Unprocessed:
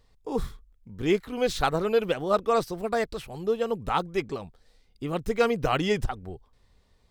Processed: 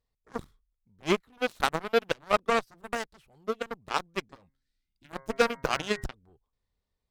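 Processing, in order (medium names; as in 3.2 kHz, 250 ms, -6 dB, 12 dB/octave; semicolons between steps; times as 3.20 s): Chebyshev shaper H 7 -16 dB, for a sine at -8 dBFS; 4.34–6.05 s: de-hum 134.7 Hz, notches 16; 4.46–5.10 s: time-frequency box 380–1300 Hz -15 dB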